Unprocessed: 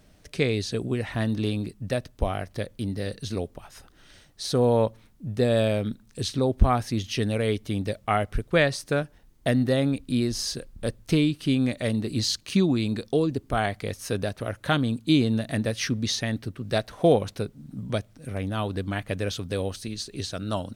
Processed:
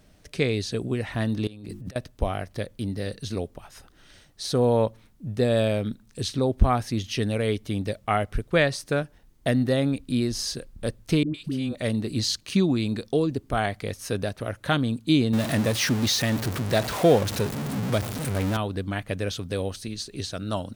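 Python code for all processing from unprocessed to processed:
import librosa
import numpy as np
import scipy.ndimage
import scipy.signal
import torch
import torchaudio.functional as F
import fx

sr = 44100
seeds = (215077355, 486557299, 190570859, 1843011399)

y = fx.chain(x, sr, fx.hum_notches(base_hz=50, count=7),
    fx.over_compress(threshold_db=-40.0, ratio=-1.0), at=(1.47, 1.96))
y = fx.chain(y, sr, fx.level_steps(step_db=9),
    fx.dispersion(late='highs', ms=113.0, hz=660.0), at=(11.23, 11.75))
y = fx.chain(y, sr, fx.zero_step(step_db=-25.0),
    fx.highpass(hz=61.0, slope=12), at=(15.33, 18.57))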